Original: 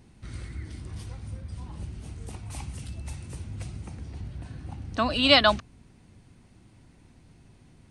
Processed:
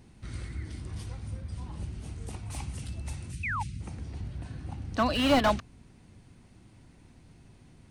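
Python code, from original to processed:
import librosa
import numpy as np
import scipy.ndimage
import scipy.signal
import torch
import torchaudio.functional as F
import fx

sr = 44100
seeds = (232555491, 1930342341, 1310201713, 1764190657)

y = fx.cheby1_bandstop(x, sr, low_hz=220.0, high_hz=2200.0, order=2, at=(3.31, 3.79), fade=0.02)
y = fx.spec_paint(y, sr, seeds[0], shape='fall', start_s=3.43, length_s=0.2, low_hz=790.0, high_hz=2700.0, level_db=-32.0)
y = fx.slew_limit(y, sr, full_power_hz=98.0)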